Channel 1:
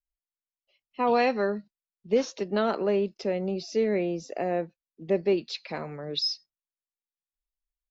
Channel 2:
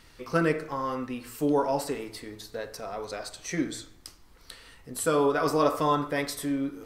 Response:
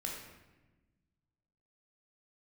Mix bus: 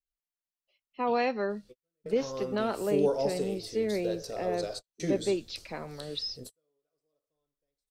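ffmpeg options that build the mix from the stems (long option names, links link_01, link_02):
-filter_complex "[0:a]volume=-4.5dB,asplit=2[link_01][link_02];[1:a]equalizer=frequency=125:width_type=o:width=1:gain=3,equalizer=frequency=250:width_type=o:width=1:gain=-5,equalizer=frequency=500:width_type=o:width=1:gain=8,equalizer=frequency=1000:width_type=o:width=1:gain=-10,equalizer=frequency=2000:width_type=o:width=1:gain=-9,equalizer=frequency=4000:width_type=o:width=1:gain=5,equalizer=frequency=8000:width_type=o:width=1:gain=4,dynaudnorm=framelen=450:gausssize=3:maxgain=13dB,adelay=1500,volume=-14dB[link_03];[link_02]apad=whole_len=368642[link_04];[link_03][link_04]sidechaingate=range=-54dB:threshold=-53dB:ratio=16:detection=peak[link_05];[link_01][link_05]amix=inputs=2:normalize=0,acrossover=split=5100[link_06][link_07];[link_07]acompressor=threshold=-44dB:ratio=4:attack=1:release=60[link_08];[link_06][link_08]amix=inputs=2:normalize=0"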